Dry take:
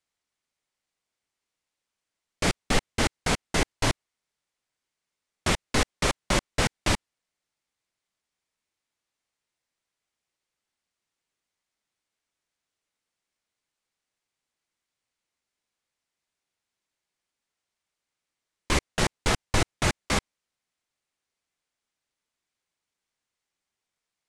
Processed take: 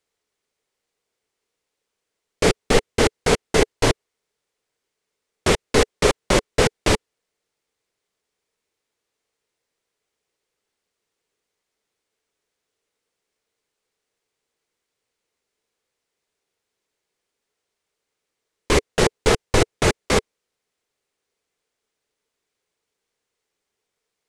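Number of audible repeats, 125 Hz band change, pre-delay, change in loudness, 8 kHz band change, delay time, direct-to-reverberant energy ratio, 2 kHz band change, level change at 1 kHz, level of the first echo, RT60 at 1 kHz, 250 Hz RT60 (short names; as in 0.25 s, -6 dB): none, +4.5 dB, none, +6.5 dB, +4.5 dB, none, none, +4.5 dB, +5.5 dB, none, none, none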